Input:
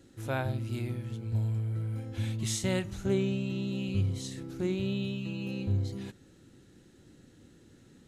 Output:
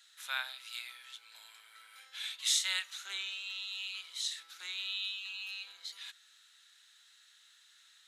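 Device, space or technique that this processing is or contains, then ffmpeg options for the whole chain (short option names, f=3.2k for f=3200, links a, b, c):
headphones lying on a table: -filter_complex "[0:a]asettb=1/sr,asplit=3[a][b][c];[a]atrim=end=5.014[d];[b]atrim=start=5.01:end=5.61,asetpts=PTS-STARTPTS,afade=t=in:d=0.004:c=qsin,afade=t=out:st=0.596:d=0.004:c=qsin,lowshelf=f=250:g=-11[e];[c]atrim=start=5.606[f];[d][e]acrossfade=d=0.004:c1=hsin:c2=qsin[g];[g][f]acrossfade=d=0.004:c1=qsin:c2=hsin,highpass=f=1.3k:w=0.5412,highpass=f=1.3k:w=1.3066,equalizer=f=3.7k:t=o:w=0.44:g=9,volume=3dB"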